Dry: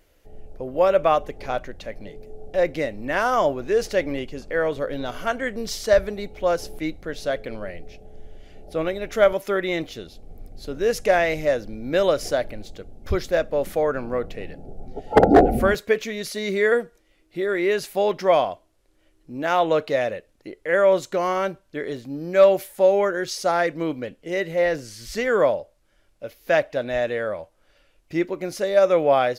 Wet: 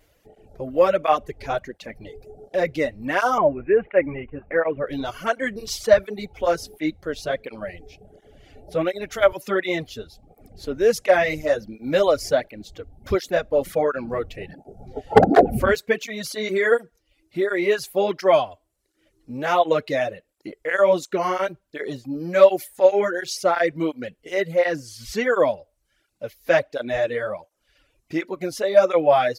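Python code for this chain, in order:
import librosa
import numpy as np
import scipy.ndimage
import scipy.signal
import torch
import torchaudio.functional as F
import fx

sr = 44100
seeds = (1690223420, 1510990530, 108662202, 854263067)

y = fx.dereverb_blind(x, sr, rt60_s=0.65)
y = fx.steep_lowpass(y, sr, hz=2600.0, slope=72, at=(3.38, 4.87))
y = fx.flanger_cancel(y, sr, hz=1.4, depth_ms=6.1)
y = y * 10.0 ** (4.5 / 20.0)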